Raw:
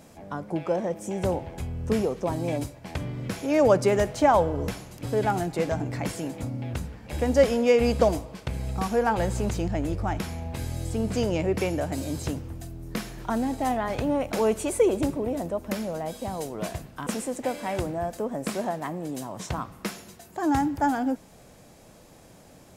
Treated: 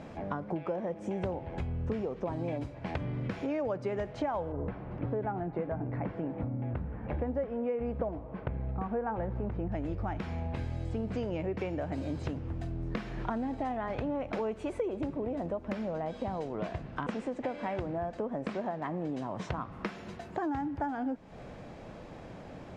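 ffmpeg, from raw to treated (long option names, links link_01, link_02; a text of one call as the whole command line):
ffmpeg -i in.wav -filter_complex "[0:a]asettb=1/sr,asplit=3[link_01][link_02][link_03];[link_01]atrim=end=4.524[link_04];[link_02]atrim=start=4.52:end=9.72,asetpts=PTS-STARTPTS,afade=type=in:duration=0.004:curve=qsin,afade=type=out:start_time=5.196:duration=0.004:curve=qsin,lowpass=1500[link_05];[link_03]atrim=start=9.716[link_06];[link_04][link_05]acrossfade=duration=0.004:curve1=hsin:curve2=qsin[link_07];[link_07][link_06]acrossfade=duration=0.004:curve1=qsin:curve2=hsin,asettb=1/sr,asplit=3[link_08][link_09][link_10];[link_08]atrim=end=15.904[link_11];[link_09]atrim=start=15.9:end=19.29,asetpts=PTS-STARTPTS,afade=type=in:duration=0.004:curve=qsin,afade=type=out:start_time=3.386:duration=0.004:curve=qsin,lowpass=8500[link_12];[link_10]atrim=start=19.286[link_13];[link_11][link_12]acrossfade=duration=0.004:curve1=hsin:curve2=qsin[link_14];[link_14][link_13]acrossfade=duration=0.004:curve1=qsin:curve2=hsin,acompressor=threshold=-38dB:ratio=6,lowpass=2600,volume=6dB" out.wav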